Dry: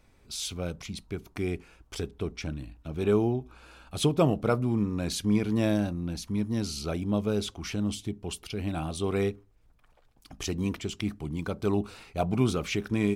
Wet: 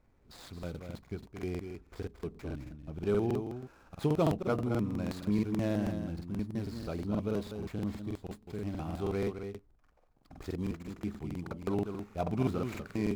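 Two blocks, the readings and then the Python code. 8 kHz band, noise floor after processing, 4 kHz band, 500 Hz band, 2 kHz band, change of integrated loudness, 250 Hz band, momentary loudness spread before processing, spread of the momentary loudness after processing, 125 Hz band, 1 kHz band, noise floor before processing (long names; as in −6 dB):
−17.0 dB, −66 dBFS, −14.0 dB, −5.0 dB, −8.0 dB, −5.5 dB, −5.0 dB, 12 LU, 13 LU, −5.0 dB, −4.5 dB, −62 dBFS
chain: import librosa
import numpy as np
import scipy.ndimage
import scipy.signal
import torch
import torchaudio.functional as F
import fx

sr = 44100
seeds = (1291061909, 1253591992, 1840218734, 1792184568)

y = scipy.signal.medfilt(x, 15)
y = y + 10.0 ** (-7.5 / 20.0) * np.pad(y, (int(221 * sr / 1000.0), 0))[:len(y)]
y = fx.buffer_crackle(y, sr, first_s=0.54, period_s=0.16, block=2048, kind='repeat')
y = y * librosa.db_to_amplitude(-5.5)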